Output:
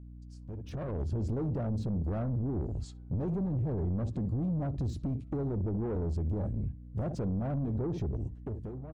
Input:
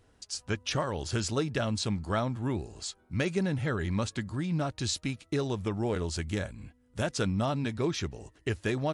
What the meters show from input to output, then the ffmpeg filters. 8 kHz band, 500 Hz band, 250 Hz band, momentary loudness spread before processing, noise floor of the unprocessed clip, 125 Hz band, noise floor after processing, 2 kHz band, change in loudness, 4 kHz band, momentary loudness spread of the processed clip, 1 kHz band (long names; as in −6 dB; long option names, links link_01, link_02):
below −20 dB, −5.5 dB, −2.0 dB, 7 LU, −65 dBFS, +1.0 dB, −47 dBFS, below −20 dB, −2.0 dB, below −20 dB, 8 LU, −10.0 dB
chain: -filter_complex "[0:a]tiltshelf=frequency=970:gain=7,asplit=2[link_01][link_02];[link_02]adelay=64,lowpass=frequency=1400:poles=1,volume=-16dB,asplit=2[link_03][link_04];[link_04]adelay=64,lowpass=frequency=1400:poles=1,volume=0.29,asplit=2[link_05][link_06];[link_06]adelay=64,lowpass=frequency=1400:poles=1,volume=0.29[link_07];[link_01][link_03][link_05][link_07]amix=inputs=4:normalize=0,acrossover=split=650[link_08][link_09];[link_09]asoftclip=type=hard:threshold=-33.5dB[link_10];[link_08][link_10]amix=inputs=2:normalize=0,afwtdn=0.0251,alimiter=level_in=0.5dB:limit=-24dB:level=0:latency=1:release=10,volume=-0.5dB,acompressor=threshold=-35dB:ratio=6,asoftclip=type=tanh:threshold=-37.5dB,dynaudnorm=framelen=110:gausssize=13:maxgain=14dB,aeval=exprs='val(0)+0.00794*(sin(2*PI*60*n/s)+sin(2*PI*2*60*n/s)/2+sin(2*PI*3*60*n/s)/3+sin(2*PI*4*60*n/s)/4+sin(2*PI*5*60*n/s)/5)':channel_layout=same,lowshelf=frequency=380:gain=4,volume=-7.5dB"